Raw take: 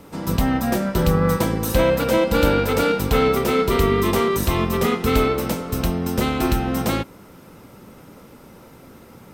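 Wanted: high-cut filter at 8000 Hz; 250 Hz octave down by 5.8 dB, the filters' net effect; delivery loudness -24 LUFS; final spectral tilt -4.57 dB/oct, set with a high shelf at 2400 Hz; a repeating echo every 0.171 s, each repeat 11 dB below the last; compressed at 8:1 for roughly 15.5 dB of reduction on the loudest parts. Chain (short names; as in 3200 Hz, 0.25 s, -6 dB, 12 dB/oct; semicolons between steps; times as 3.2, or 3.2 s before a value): LPF 8000 Hz; bell 250 Hz -8 dB; high shelf 2400 Hz +4 dB; compressor 8:1, threshold -31 dBFS; feedback echo 0.171 s, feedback 28%, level -11 dB; gain +10 dB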